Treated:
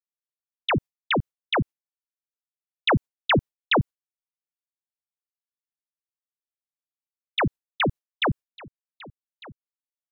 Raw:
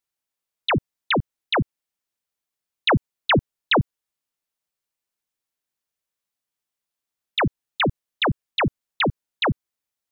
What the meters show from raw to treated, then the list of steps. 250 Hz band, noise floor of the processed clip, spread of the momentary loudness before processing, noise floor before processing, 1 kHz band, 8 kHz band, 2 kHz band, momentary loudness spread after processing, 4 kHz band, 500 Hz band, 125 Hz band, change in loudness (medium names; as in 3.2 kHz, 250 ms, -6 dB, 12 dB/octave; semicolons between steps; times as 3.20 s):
-3.0 dB, under -85 dBFS, 5 LU, under -85 dBFS, -3.0 dB, no reading, -3.0 dB, 7 LU, -3.5 dB, -3.0 dB, -3.0 dB, -2.0 dB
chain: gate with hold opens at -16 dBFS; trim -2 dB